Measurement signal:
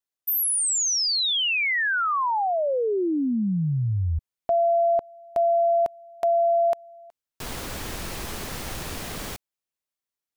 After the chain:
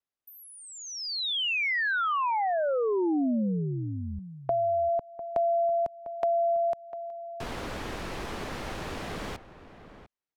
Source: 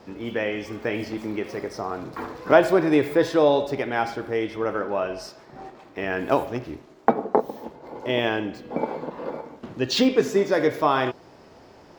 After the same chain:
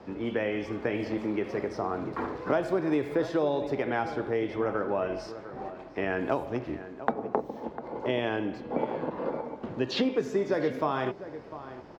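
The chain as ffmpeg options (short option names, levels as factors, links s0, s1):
-filter_complex "[0:a]aemphasis=mode=reproduction:type=75fm,acrossover=split=210|5100[s0][s1][s2];[s0]acompressor=threshold=0.0112:ratio=4[s3];[s1]acompressor=threshold=0.0501:ratio=4[s4];[s2]acompressor=threshold=0.00282:ratio=4[s5];[s3][s4][s5]amix=inputs=3:normalize=0,asplit=2[s6][s7];[s7]adelay=699.7,volume=0.224,highshelf=f=4000:g=-15.7[s8];[s6][s8]amix=inputs=2:normalize=0"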